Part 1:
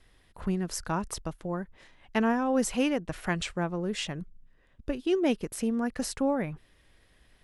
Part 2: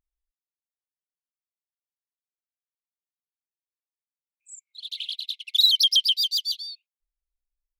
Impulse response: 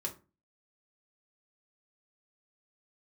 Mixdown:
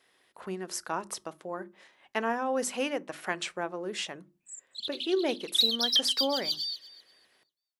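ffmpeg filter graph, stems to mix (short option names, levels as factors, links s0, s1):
-filter_complex "[0:a]acontrast=33,bandreject=f=50:t=h:w=6,bandreject=f=100:t=h:w=6,bandreject=f=150:t=h:w=6,bandreject=f=200:t=h:w=6,bandreject=f=250:t=h:w=6,bandreject=f=300:t=h:w=6,bandreject=f=350:t=h:w=6,volume=0.447,asplit=3[s0][s1][s2];[s1]volume=0.224[s3];[1:a]equalizer=f=4600:t=o:w=0.77:g=4,volume=0.75,asplit=3[s4][s5][s6];[s5]volume=0.141[s7];[s6]volume=0.126[s8];[s2]apad=whole_len=343909[s9];[s4][s9]sidechaincompress=threshold=0.00794:ratio=8:attack=16:release=128[s10];[2:a]atrim=start_sample=2205[s11];[s3][s7]amix=inputs=2:normalize=0[s12];[s12][s11]afir=irnorm=-1:irlink=0[s13];[s8]aecho=0:1:244|488|732|976:1|0.24|0.0576|0.0138[s14];[s0][s10][s13][s14]amix=inputs=4:normalize=0,highpass=360"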